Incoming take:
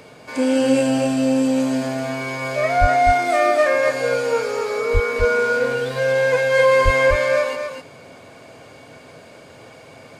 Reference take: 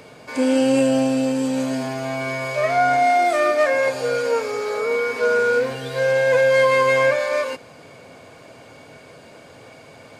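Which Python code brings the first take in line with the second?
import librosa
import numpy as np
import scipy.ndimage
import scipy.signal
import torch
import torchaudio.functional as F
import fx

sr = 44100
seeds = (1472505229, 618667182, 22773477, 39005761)

y = fx.highpass(x, sr, hz=140.0, slope=24, at=(2.8, 2.92), fade=0.02)
y = fx.highpass(y, sr, hz=140.0, slope=24, at=(4.93, 5.05), fade=0.02)
y = fx.highpass(y, sr, hz=140.0, slope=24, at=(6.84, 6.96), fade=0.02)
y = fx.fix_echo_inverse(y, sr, delay_ms=251, level_db=-5.5)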